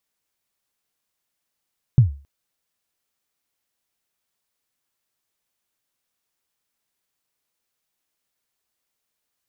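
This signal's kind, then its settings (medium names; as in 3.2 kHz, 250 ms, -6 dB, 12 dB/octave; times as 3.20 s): kick drum length 0.27 s, from 140 Hz, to 70 Hz, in 125 ms, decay 0.35 s, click off, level -5 dB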